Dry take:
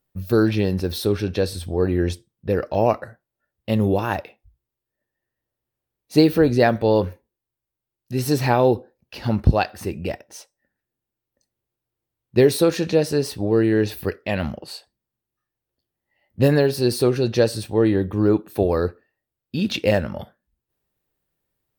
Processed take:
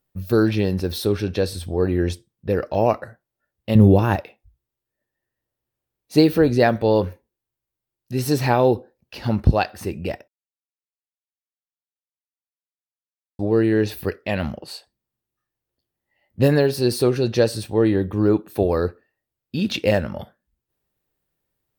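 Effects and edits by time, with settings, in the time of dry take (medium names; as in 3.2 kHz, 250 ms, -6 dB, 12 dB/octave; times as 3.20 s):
3.75–4.16 s: bass shelf 340 Hz +10.5 dB
10.28–13.39 s: mute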